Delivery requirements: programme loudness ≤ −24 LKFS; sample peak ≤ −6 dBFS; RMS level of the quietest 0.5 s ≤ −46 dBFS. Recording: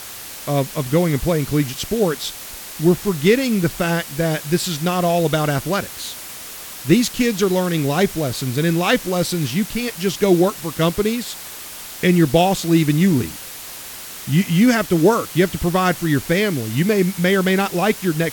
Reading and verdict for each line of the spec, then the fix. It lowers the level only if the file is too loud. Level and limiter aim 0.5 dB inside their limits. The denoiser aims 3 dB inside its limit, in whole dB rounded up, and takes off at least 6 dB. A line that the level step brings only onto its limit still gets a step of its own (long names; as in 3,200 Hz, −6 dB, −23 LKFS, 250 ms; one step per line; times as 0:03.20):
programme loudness −18.5 LKFS: out of spec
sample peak −1.5 dBFS: out of spec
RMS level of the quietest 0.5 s −34 dBFS: out of spec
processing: broadband denoise 9 dB, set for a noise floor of −34 dBFS
level −6 dB